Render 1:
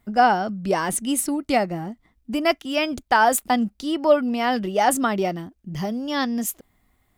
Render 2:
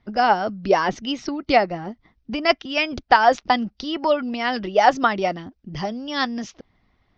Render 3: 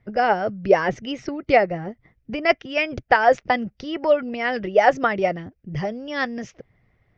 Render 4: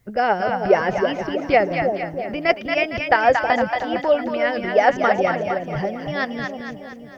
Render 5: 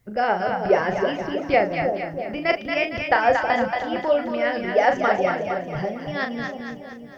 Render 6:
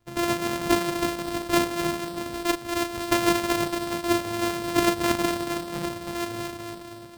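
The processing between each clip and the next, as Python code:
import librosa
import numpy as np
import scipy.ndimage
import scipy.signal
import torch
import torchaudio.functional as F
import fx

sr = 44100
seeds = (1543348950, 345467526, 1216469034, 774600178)

y1 = fx.hpss(x, sr, part='harmonic', gain_db=-9)
y1 = scipy.signal.sosfilt(scipy.signal.butter(12, 5800.0, 'lowpass', fs=sr, output='sos'), y1)
y1 = F.gain(torch.from_numpy(y1), 5.5).numpy()
y2 = fx.graphic_eq(y1, sr, hz=(125, 250, 500, 1000, 2000, 4000), db=(11, -5, 8, -6, 7, -10))
y2 = F.gain(torch.from_numpy(y2), -2.0).numpy()
y3 = fx.env_lowpass(y2, sr, base_hz=2700.0, full_db=-16.5)
y3 = fx.quant_dither(y3, sr, seeds[0], bits=12, dither='triangular')
y3 = fx.echo_split(y3, sr, split_hz=690.0, low_ms=320, high_ms=229, feedback_pct=52, wet_db=-4.5)
y4 = fx.doubler(y3, sr, ms=38.0, db=-7.0)
y4 = F.gain(torch.from_numpy(y4), -3.0).numpy()
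y5 = np.r_[np.sort(y4[:len(y4) // 128 * 128].reshape(-1, 128), axis=1).ravel(), y4[len(y4) // 128 * 128:]]
y5 = y5 + 10.0 ** (-21.0 / 20.0) * np.pad(y5, (int(543 * sr / 1000.0), 0))[:len(y5)]
y5 = F.gain(torch.from_numpy(y5), -4.0).numpy()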